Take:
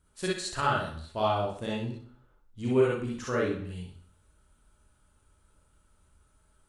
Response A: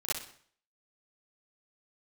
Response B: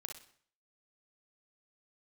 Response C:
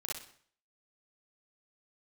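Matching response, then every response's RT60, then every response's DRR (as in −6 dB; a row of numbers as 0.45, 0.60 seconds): C; 0.55, 0.55, 0.55 seconds; −11.5, 3.0, −5.0 decibels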